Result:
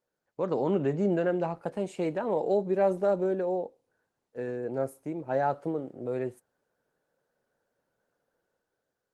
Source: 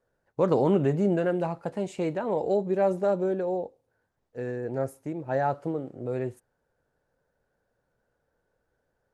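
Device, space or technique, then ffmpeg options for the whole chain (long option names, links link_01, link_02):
video call: -filter_complex "[0:a]asplit=3[link_01][link_02][link_03];[link_01]afade=type=out:start_time=4.48:duration=0.02[link_04];[link_02]bandreject=frequency=1800:width=9.1,afade=type=in:start_time=4.48:duration=0.02,afade=type=out:start_time=5.41:duration=0.02[link_05];[link_03]afade=type=in:start_time=5.41:duration=0.02[link_06];[link_04][link_05][link_06]amix=inputs=3:normalize=0,highpass=160,dynaudnorm=framelen=130:gausssize=11:maxgain=7dB,volume=-7.5dB" -ar 48000 -c:a libopus -b:a 24k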